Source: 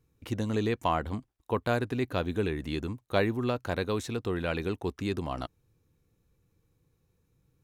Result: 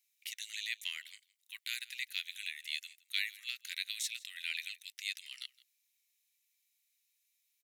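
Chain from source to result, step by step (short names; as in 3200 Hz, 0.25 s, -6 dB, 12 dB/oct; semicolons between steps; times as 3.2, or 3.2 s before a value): Chebyshev high-pass 2000 Hz, order 5; high shelf 4000 Hz +7 dB; echo 0.165 s -22 dB; gain +1.5 dB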